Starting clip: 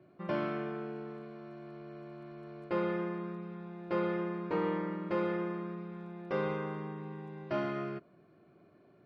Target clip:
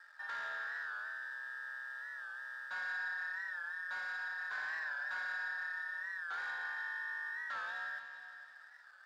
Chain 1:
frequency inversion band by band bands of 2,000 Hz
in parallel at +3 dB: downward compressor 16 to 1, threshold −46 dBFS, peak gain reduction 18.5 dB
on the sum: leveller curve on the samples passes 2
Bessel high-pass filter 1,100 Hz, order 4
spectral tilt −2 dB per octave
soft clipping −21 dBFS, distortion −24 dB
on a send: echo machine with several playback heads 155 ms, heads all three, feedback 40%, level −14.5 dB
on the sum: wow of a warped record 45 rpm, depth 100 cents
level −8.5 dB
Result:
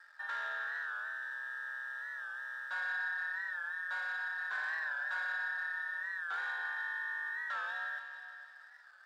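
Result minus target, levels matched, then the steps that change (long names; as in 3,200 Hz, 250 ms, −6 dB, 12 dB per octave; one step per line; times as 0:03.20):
downward compressor: peak gain reduction −7 dB; soft clipping: distortion −9 dB
change: downward compressor 16 to 1, threshold −53.5 dBFS, peak gain reduction 25.5 dB
change: soft clipping −28 dBFS, distortion −15 dB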